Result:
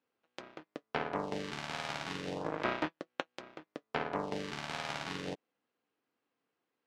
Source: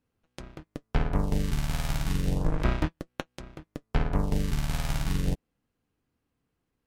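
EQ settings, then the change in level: HPF 390 Hz 12 dB/oct; LPF 4400 Hz 12 dB/oct; 0.0 dB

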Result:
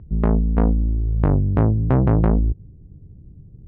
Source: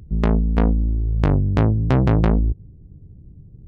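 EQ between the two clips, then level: LPF 1400 Hz 12 dB/oct; 0.0 dB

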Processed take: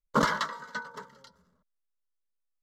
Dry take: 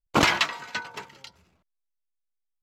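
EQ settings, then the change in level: high shelf 3900 Hz -9.5 dB; fixed phaser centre 500 Hz, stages 8; 0.0 dB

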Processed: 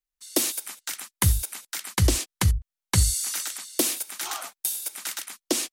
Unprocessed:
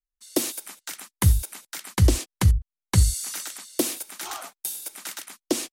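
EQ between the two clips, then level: tilt shelf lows -3.5 dB, about 810 Hz; 0.0 dB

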